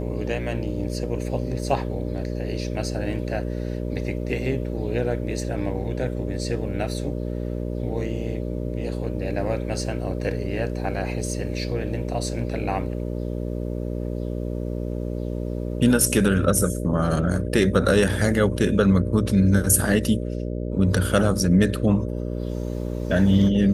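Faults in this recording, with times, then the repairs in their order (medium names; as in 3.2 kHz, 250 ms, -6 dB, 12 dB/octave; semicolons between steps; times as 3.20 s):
buzz 60 Hz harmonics 10 -28 dBFS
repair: de-hum 60 Hz, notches 10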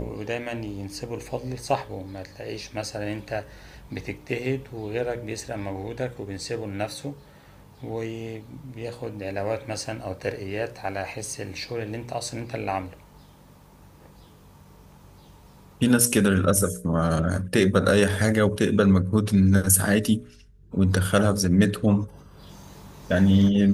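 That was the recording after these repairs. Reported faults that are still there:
nothing left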